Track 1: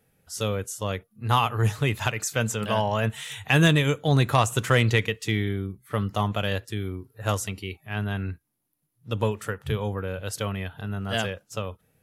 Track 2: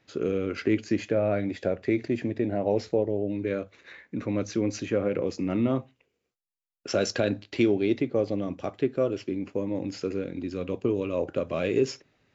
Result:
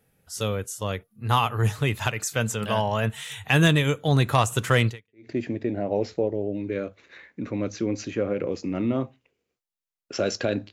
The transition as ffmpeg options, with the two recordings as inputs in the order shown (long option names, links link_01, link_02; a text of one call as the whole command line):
ffmpeg -i cue0.wav -i cue1.wav -filter_complex "[0:a]apad=whole_dur=10.72,atrim=end=10.72,atrim=end=5.31,asetpts=PTS-STARTPTS[link_01];[1:a]atrim=start=1.62:end=7.47,asetpts=PTS-STARTPTS[link_02];[link_01][link_02]acrossfade=duration=0.44:curve1=exp:curve2=exp" out.wav